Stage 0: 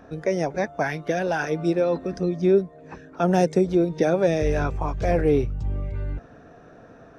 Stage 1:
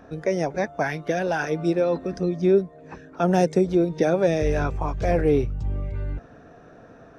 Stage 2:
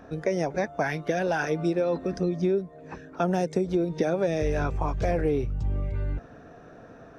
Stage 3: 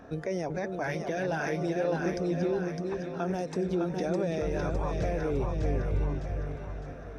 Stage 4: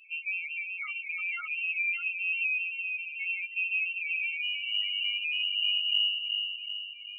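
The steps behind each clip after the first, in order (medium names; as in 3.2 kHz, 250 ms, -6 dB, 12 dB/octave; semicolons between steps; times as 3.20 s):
no audible change
compression, threshold -21 dBFS, peak gain reduction 8 dB
peak limiter -21.5 dBFS, peak gain reduction 8.5 dB; on a send: two-band feedback delay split 500 Hz, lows 375 ms, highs 608 ms, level -4 dB; on the sum: trim -1.5 dB
loudest bins only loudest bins 4; frequency inversion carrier 2.9 kHz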